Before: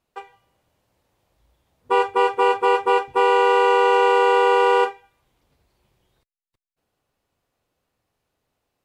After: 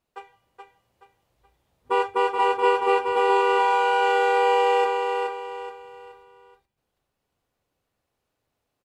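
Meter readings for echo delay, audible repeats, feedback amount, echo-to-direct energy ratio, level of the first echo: 0.425 s, 4, 35%, -4.5 dB, -5.0 dB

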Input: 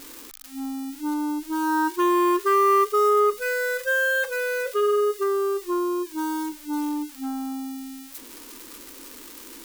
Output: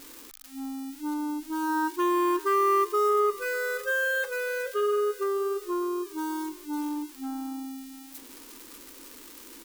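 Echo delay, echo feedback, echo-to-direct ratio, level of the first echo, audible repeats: 0.6 s, 25%, -19.5 dB, -20.0 dB, 2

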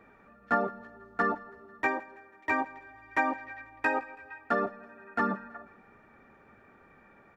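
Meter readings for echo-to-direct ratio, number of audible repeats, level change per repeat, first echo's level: -20.5 dB, 3, -5.5 dB, -22.0 dB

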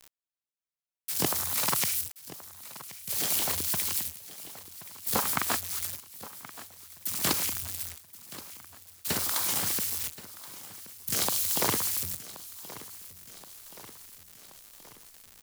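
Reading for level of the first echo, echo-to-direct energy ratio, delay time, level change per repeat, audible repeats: -16.5 dB, -14.5 dB, 1.076 s, -4.5 dB, 5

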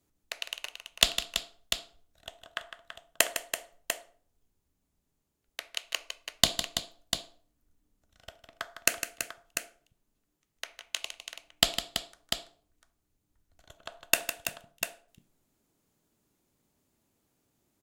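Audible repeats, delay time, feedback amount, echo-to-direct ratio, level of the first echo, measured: 3, 0.156 s, no steady repeat, -4.5 dB, -10.0 dB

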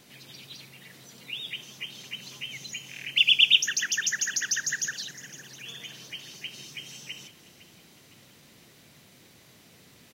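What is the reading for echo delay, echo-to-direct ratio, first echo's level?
0.509 s, -16.0 dB, -17.0 dB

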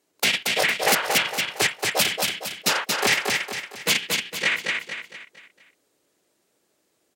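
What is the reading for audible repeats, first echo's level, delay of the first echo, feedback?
5, -3.5 dB, 0.229 s, 42%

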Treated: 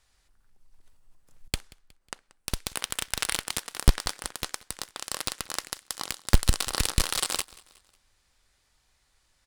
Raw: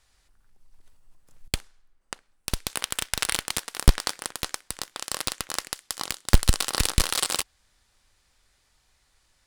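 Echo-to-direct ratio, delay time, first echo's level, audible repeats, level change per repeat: -22.0 dB, 0.182 s, -23.0 dB, 2, -6.5 dB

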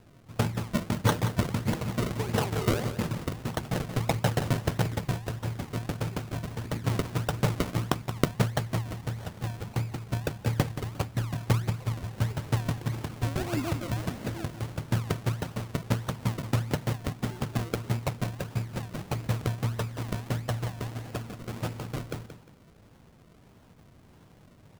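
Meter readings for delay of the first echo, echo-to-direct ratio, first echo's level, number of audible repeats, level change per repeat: 0.177 s, -10.5 dB, -11.0 dB, 2, -11.5 dB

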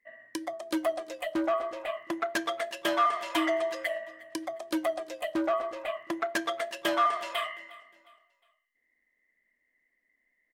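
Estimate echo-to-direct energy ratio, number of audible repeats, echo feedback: -21.0 dB, 2, 39%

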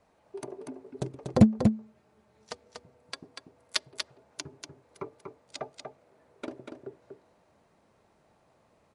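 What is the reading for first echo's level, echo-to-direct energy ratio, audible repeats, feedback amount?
-5.5 dB, -5.5 dB, 1, no steady repeat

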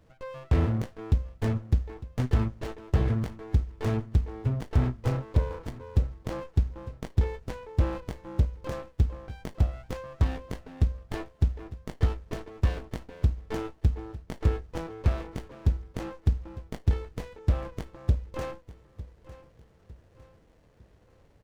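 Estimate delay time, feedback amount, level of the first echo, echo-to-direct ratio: 0.904 s, 41%, -17.0 dB, -16.0 dB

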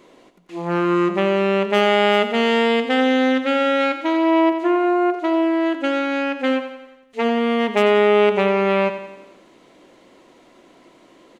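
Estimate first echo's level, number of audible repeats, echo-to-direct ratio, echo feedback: -10.5 dB, 5, -9.0 dB, 54%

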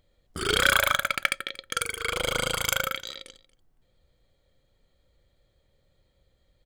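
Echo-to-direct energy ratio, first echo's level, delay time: -20.5 dB, -20.5 dB, 0.233 s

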